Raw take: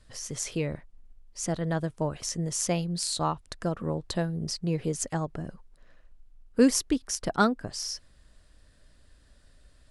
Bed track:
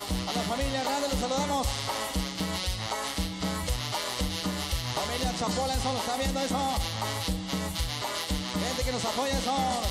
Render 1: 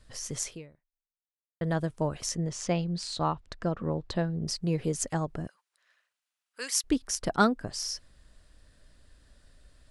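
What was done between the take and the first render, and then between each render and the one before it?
0.43–1.61 fade out exponential; 2.35–4.47 air absorption 110 m; 5.47–6.84 HPF 1500 Hz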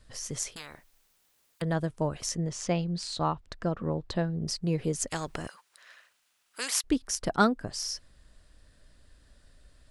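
0.56–1.62 spectral compressor 10:1; 5.11–6.81 spectral compressor 2:1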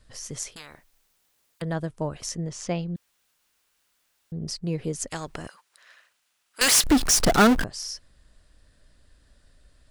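2.96–4.32 room tone; 6.61–7.64 power-law curve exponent 0.35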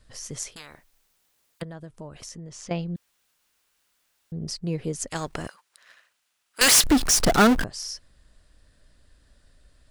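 1.63–2.71 compressor 3:1, threshold -39 dBFS; 5.15–6.86 sample leveller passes 1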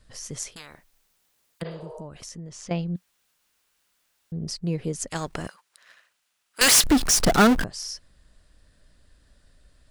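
1.68–1.98 spectral repair 360–5500 Hz both; bell 180 Hz +3 dB 0.28 oct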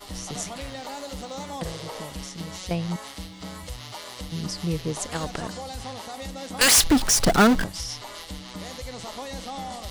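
add bed track -7 dB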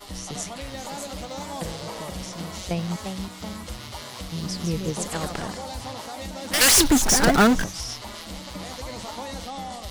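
echoes that change speed 0.645 s, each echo +2 st, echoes 2, each echo -6 dB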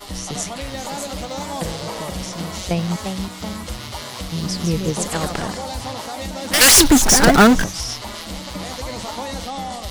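gain +6 dB

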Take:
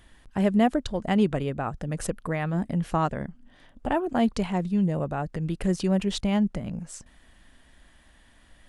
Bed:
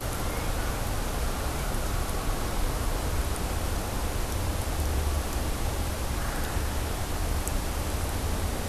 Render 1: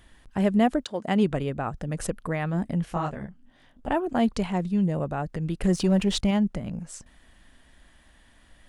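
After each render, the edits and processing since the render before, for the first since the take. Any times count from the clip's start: 0.83–1.23 HPF 400 Hz -> 100 Hz; 2.85–3.88 detuned doubles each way 44 cents; 5.63–6.31 sample leveller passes 1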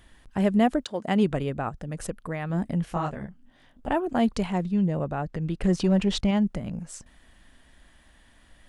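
1.69–2.5 gain -3.5 dB; 4.62–6.37 air absorption 53 m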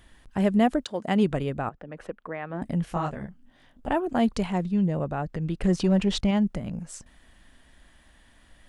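1.69–2.62 three-band isolator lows -14 dB, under 260 Hz, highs -24 dB, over 3100 Hz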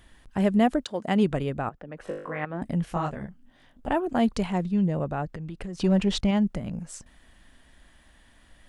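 2.05–2.45 flutter echo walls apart 3.4 m, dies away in 0.58 s; 5.25–5.81 compressor 10:1, threshold -32 dBFS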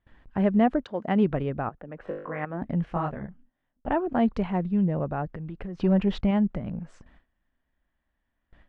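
LPF 2100 Hz 12 dB/oct; gate with hold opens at -44 dBFS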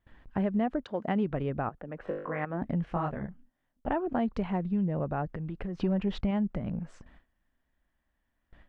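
compressor 3:1, threshold -27 dBFS, peak gain reduction 8.5 dB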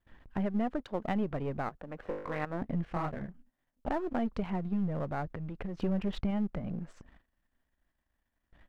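half-wave gain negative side -7 dB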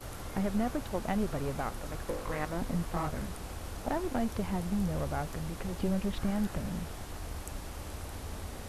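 add bed -11.5 dB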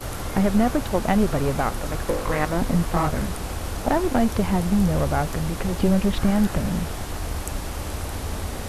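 gain +11.5 dB

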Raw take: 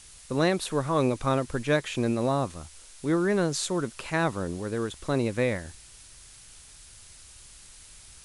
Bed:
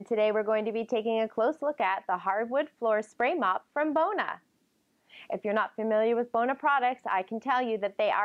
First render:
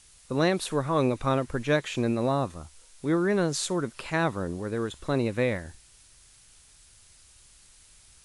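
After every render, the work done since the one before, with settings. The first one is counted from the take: noise print and reduce 6 dB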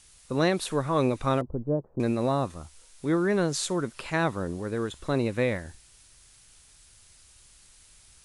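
1.41–2 Bessel low-pass 520 Hz, order 8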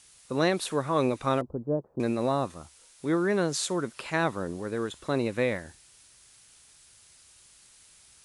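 HPF 170 Hz 6 dB/oct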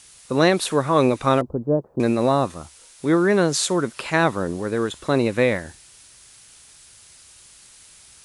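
gain +8 dB

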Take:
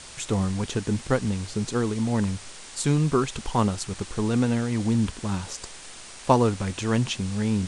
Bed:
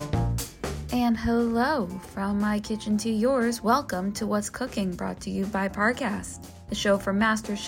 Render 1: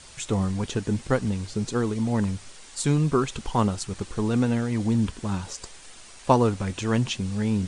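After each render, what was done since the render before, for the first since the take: denoiser 6 dB, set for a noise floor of -43 dBFS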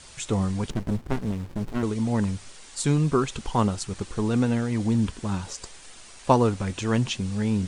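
0.7–1.83 running maximum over 65 samples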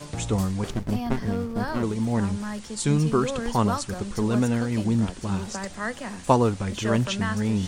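add bed -7 dB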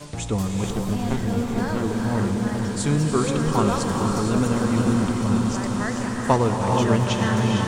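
swelling echo 99 ms, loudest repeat 8, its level -16.5 dB; non-linear reverb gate 0.49 s rising, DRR 1.5 dB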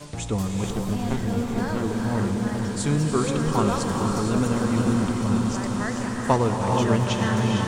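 gain -1.5 dB

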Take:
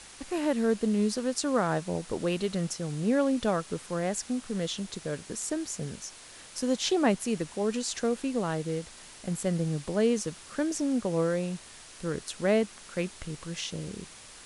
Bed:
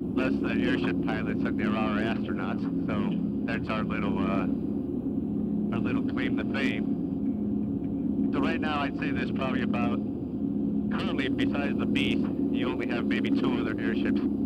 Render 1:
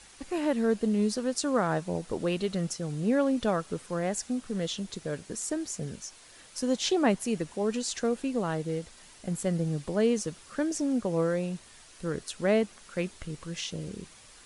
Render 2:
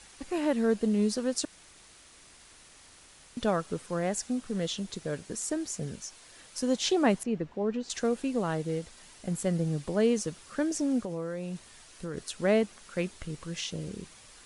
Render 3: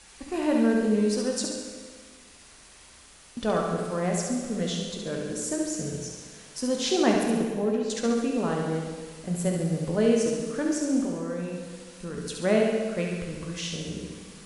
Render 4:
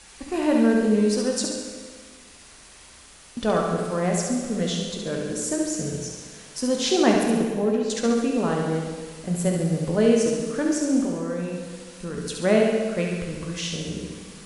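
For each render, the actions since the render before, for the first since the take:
denoiser 6 dB, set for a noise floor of -49 dBFS
1.45–3.37 room tone; 7.23–7.9 tape spacing loss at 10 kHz 29 dB; 11.01–12.17 compressor 4:1, threshold -32 dBFS
on a send: flutter echo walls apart 11.9 m, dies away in 0.73 s; on the sum: plate-style reverb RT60 1.7 s, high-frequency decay 0.9×, DRR 2.5 dB
gain +3.5 dB

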